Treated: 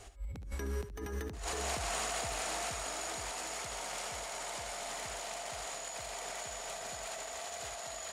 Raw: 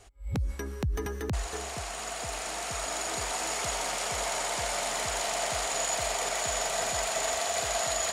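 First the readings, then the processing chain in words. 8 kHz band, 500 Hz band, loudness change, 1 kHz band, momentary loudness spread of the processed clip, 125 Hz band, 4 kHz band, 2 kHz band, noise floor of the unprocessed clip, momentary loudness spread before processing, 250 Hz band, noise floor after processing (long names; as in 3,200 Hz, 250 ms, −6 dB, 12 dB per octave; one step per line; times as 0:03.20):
−9.0 dB, −8.5 dB, −8.5 dB, −8.0 dB, 6 LU, −8.0 dB, −8.5 dB, −8.0 dB, −38 dBFS, 6 LU, −7.5 dB, −44 dBFS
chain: compressor whose output falls as the input rises −38 dBFS, ratio −1
on a send: ambience of single reflections 62 ms −17.5 dB, 72 ms −11.5 dB
on the sum: level −3 dB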